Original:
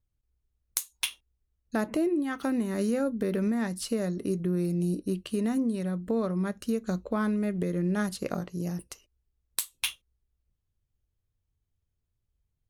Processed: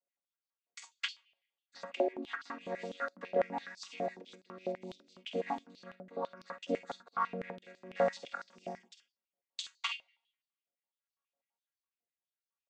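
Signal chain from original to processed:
channel vocoder with a chord as carrier major triad, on F#3
ambience of single reflections 49 ms −11 dB, 63 ms −13 dB
rotating-speaker cabinet horn 5.5 Hz, later 0.65 Hz, at 0:04.52
on a send at −23.5 dB: convolution reverb RT60 0.90 s, pre-delay 3 ms
on the sum: high-pass on a step sequencer 12 Hz 650–4,500 Hz
level +6.5 dB

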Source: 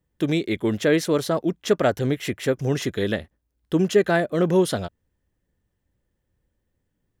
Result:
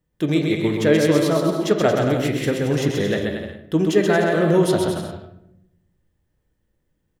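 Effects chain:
bouncing-ball delay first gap 130 ms, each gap 0.75×, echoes 5
convolution reverb RT60 0.80 s, pre-delay 6 ms, DRR 6 dB

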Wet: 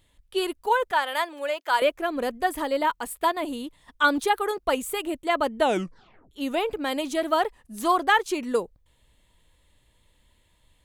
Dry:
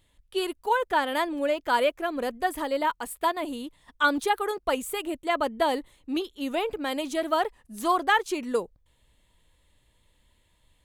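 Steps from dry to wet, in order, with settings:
0:00.91–0:01.82: high-pass filter 680 Hz 12 dB per octave
0:05.58: tape stop 0.73 s
level +2 dB

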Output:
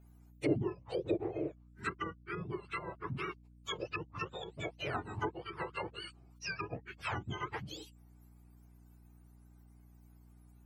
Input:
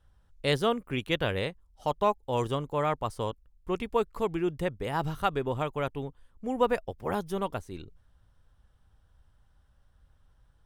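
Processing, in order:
frequency axis turned over on the octave scale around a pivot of 1,100 Hz
mains hum 60 Hz, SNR 24 dB
treble cut that deepens with the level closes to 410 Hz, closed at −28.5 dBFS
level +1 dB

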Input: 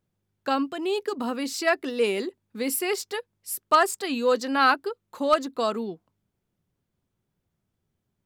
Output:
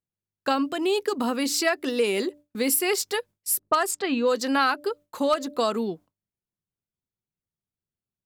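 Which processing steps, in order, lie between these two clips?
0:03.59–0:04.29: low-pass that shuts in the quiet parts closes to 600 Hz, open at −17.5 dBFS
hum removal 293.8 Hz, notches 2
noise gate with hold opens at −47 dBFS
high-shelf EQ 5,300 Hz +5.5 dB
downward compressor 6 to 1, threshold −23 dBFS, peak gain reduction 9.5 dB
level +4 dB

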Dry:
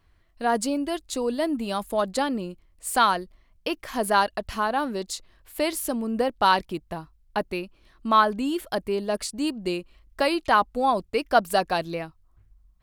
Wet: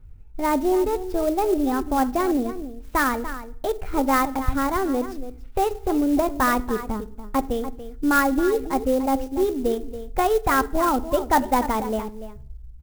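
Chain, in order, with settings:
high-shelf EQ 3,900 Hz −6 dB
slap from a distant wall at 49 metres, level −12 dB
convolution reverb RT60 0.55 s, pre-delay 5 ms, DRR 14 dB
pitch shifter +4.5 semitones
low-pass filter 8,000 Hz
spectral tilt −4 dB per octave
converter with an unsteady clock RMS 0.03 ms

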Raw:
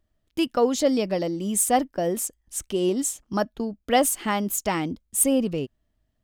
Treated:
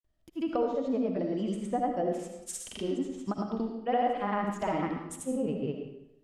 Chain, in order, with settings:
treble cut that deepens with the level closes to 1,200 Hz, closed at −19.5 dBFS
downward compressor, threshold −22 dBFS, peak gain reduction 7 dB
granular cloud, pitch spread up and down by 0 semitones
convolution reverb RT60 0.85 s, pre-delay 35 ms, DRR 3 dB
level −3 dB

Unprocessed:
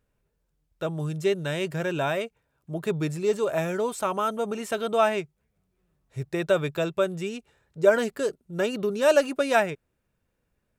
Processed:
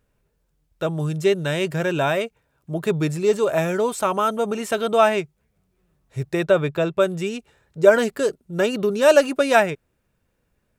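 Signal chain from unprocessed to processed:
0:06.45–0:07.00: high-shelf EQ 4,000 Hz −10 dB
level +5.5 dB

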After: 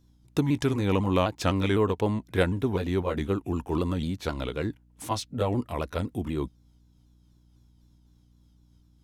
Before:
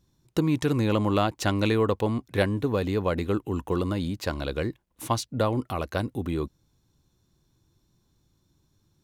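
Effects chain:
pitch shifter swept by a sawtooth −2.5 semitones, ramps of 252 ms
mains hum 60 Hz, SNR 31 dB

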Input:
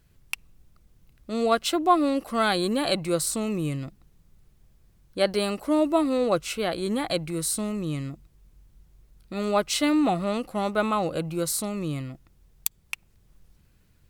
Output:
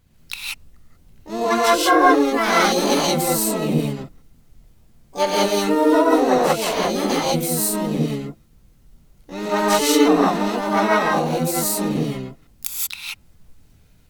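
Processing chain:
tape wow and flutter 17 cents
reverb whose tail is shaped and stops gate 210 ms rising, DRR −5.5 dB
pitch-shifted copies added +7 semitones −2 dB, +12 semitones −16 dB
level −1.5 dB

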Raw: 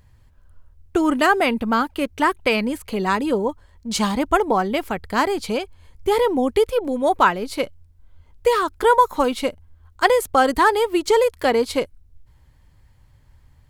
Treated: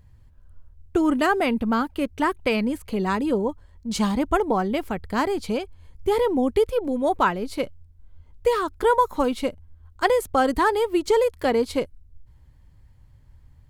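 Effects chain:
low-shelf EQ 410 Hz +7.5 dB
level −6 dB

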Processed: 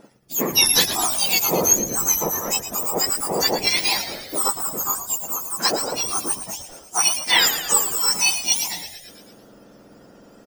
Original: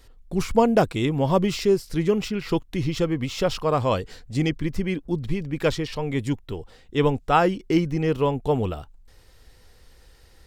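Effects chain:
frequency axis turned over on the octave scale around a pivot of 1,600 Hz
echo with shifted repeats 112 ms, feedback 62%, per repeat −84 Hz, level −11 dB
level +7.5 dB

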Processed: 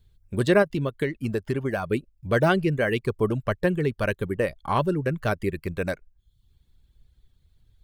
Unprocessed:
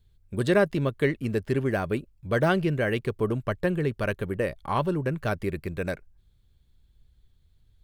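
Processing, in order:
reverb reduction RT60 0.62 s
0:00.62–0:01.88: downward compressor, threshold −25 dBFS, peak gain reduction 7.5 dB
level +3 dB

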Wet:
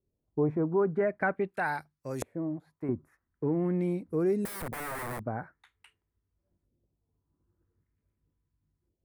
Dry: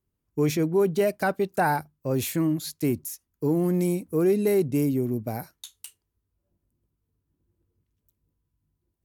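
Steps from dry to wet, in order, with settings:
0:01.50–0:02.89: tilt shelving filter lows −8.5 dB, about 1,500 Hz
in parallel at −2 dB: downward compressor 6 to 1, threshold −30 dBFS, peak gain reduction 12 dB
on the sum: auto-filter low-pass saw up 0.45 Hz 490–6,800 Hz
0:04.45–0:05.24: wrap-around overflow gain 23.5 dB
flat-topped bell 4,300 Hz −13.5 dB
level −7.5 dB

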